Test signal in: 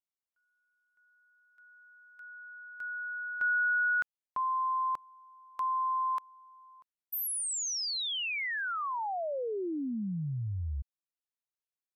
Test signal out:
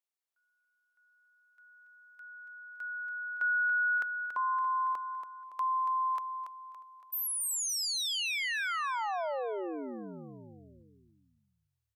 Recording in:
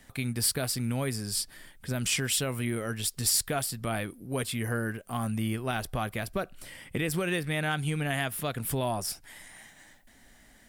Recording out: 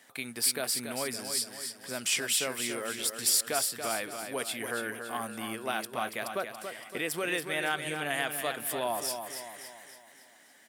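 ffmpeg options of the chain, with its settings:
-af "highpass=390,aecho=1:1:282|564|846|1128|1410:0.422|0.198|0.0932|0.0438|0.0206"

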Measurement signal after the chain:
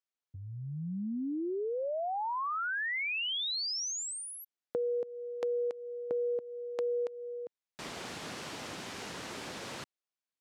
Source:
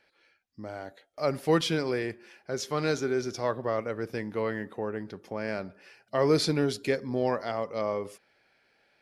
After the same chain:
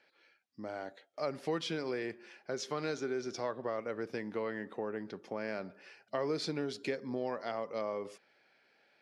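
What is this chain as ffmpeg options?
-af "acompressor=threshold=-32dB:ratio=3,highpass=170,lowpass=6.8k,volume=-1.5dB"

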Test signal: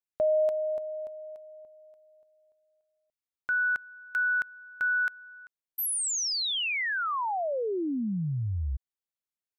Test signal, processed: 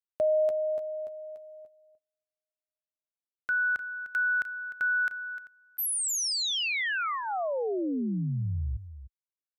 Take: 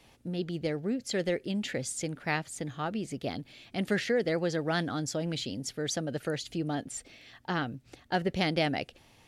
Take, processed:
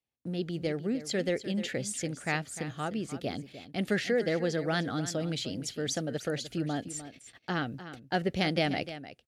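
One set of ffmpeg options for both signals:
-filter_complex "[0:a]equalizer=f=970:t=o:w=0.28:g=-6,agate=range=-33dB:threshold=-51dB:ratio=16:release=88:detection=rms,highpass=49,asplit=2[a][b];[b]aecho=0:1:302:0.224[c];[a][c]amix=inputs=2:normalize=0"

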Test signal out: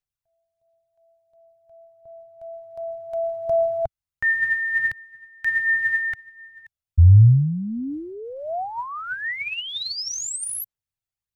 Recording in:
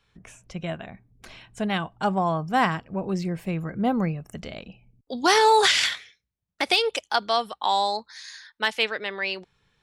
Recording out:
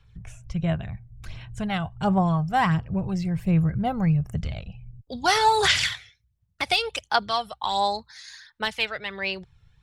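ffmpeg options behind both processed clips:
-af "aphaser=in_gain=1:out_gain=1:delay=1.5:decay=0.44:speed=1.4:type=sinusoidal,lowshelf=f=170:t=q:w=1.5:g=13,volume=-2.5dB"

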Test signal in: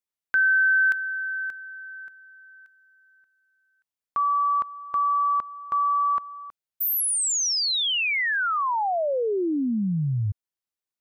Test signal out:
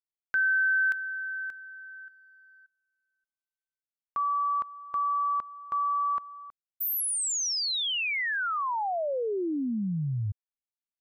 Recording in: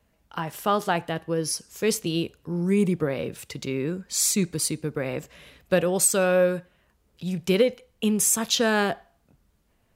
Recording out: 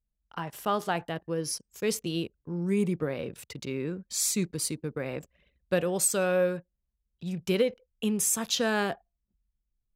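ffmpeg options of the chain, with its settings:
-af "anlmdn=0.1,volume=-5dB"

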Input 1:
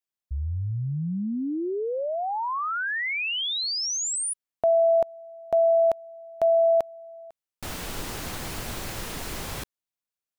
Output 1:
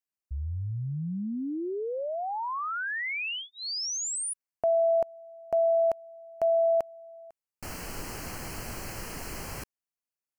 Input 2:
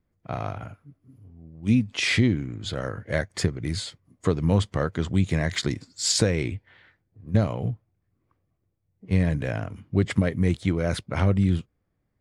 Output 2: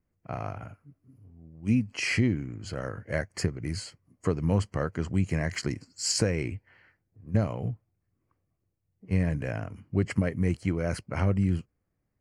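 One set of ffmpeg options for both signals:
-af "asuperstop=centerf=3600:order=4:qfactor=3,volume=-4dB"

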